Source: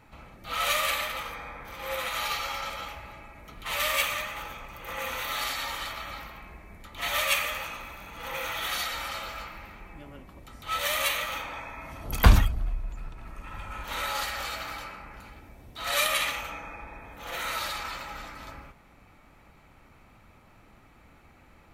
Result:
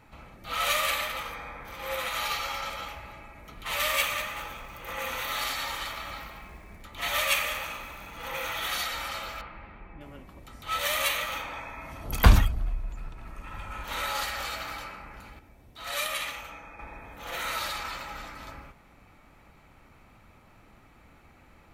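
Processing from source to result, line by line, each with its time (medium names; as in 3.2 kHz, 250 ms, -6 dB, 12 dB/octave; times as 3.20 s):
3.96–8.25 s: bit-crushed delay 195 ms, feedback 35%, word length 8-bit, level -14 dB
9.41–10.01 s: distance through air 370 m
15.39–16.79 s: gain -5.5 dB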